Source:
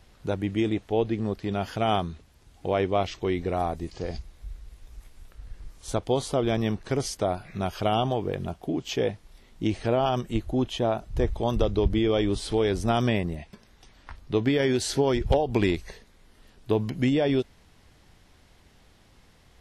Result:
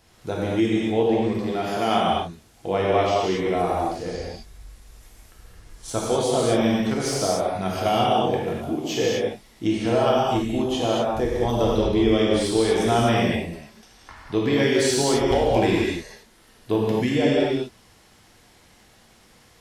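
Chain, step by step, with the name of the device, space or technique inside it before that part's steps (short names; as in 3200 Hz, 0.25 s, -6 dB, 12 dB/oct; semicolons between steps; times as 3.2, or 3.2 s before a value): 1.51–1.98 HPF 160 Hz 12 dB/oct; low shelf 110 Hz -12 dB; non-linear reverb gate 0.28 s flat, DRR -5.5 dB; exciter from parts (in parallel at -5 dB: HPF 4500 Hz 12 dB/oct + soft clip -34.5 dBFS, distortion -9 dB)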